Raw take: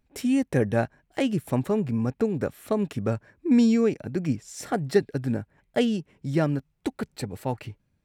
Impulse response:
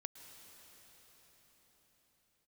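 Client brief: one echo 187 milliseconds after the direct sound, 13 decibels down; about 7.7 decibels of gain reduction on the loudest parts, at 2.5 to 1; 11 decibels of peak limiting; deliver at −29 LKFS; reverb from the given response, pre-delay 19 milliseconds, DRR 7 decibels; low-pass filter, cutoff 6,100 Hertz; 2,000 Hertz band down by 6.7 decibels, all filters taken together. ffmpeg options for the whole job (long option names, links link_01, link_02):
-filter_complex "[0:a]lowpass=6100,equalizer=frequency=2000:width_type=o:gain=-9,acompressor=threshold=-27dB:ratio=2.5,alimiter=level_in=3dB:limit=-24dB:level=0:latency=1,volume=-3dB,aecho=1:1:187:0.224,asplit=2[link_01][link_02];[1:a]atrim=start_sample=2205,adelay=19[link_03];[link_02][link_03]afir=irnorm=-1:irlink=0,volume=-3dB[link_04];[link_01][link_04]amix=inputs=2:normalize=0,volume=7dB"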